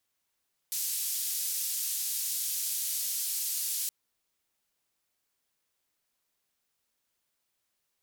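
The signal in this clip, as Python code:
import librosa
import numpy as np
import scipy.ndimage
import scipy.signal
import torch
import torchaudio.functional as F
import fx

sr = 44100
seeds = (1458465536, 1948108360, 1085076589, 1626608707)

y = fx.band_noise(sr, seeds[0], length_s=3.17, low_hz=5000.0, high_hz=16000.0, level_db=-32.5)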